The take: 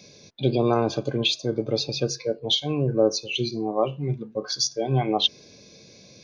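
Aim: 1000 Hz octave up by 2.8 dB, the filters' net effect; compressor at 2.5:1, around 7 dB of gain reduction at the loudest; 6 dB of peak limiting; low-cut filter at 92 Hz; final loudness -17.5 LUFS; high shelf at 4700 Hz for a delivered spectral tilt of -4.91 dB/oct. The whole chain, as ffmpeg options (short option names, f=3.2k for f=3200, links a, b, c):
-af "highpass=92,equalizer=f=1k:t=o:g=4.5,highshelf=f=4.7k:g=-8,acompressor=threshold=-25dB:ratio=2.5,volume=13.5dB,alimiter=limit=-6dB:level=0:latency=1"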